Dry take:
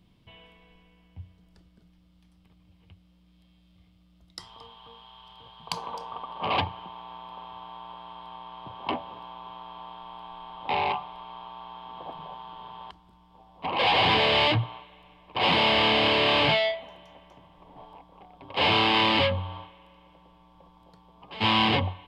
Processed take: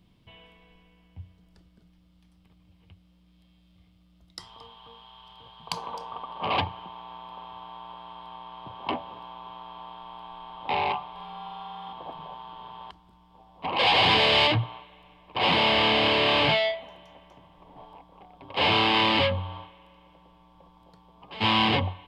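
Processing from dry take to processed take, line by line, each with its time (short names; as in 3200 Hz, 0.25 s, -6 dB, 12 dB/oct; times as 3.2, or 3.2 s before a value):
11.11–11.93 flutter echo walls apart 7.7 m, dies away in 1.1 s
13.76–14.47 high shelf 4700 Hz +9 dB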